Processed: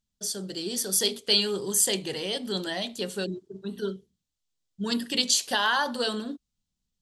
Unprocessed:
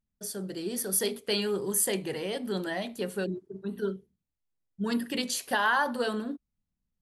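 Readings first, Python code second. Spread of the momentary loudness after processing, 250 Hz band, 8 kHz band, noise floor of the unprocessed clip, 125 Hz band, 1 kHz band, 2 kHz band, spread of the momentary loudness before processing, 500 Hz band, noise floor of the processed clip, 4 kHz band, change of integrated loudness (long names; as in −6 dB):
12 LU, 0.0 dB, +5.0 dB, −85 dBFS, 0.0 dB, 0.0 dB, +0.5 dB, 11 LU, 0.0 dB, −84 dBFS, +9.5 dB, +3.5 dB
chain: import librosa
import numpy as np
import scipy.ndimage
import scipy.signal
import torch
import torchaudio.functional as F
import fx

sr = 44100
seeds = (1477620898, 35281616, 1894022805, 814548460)

y = fx.band_shelf(x, sr, hz=4900.0, db=10.5, octaves=1.7)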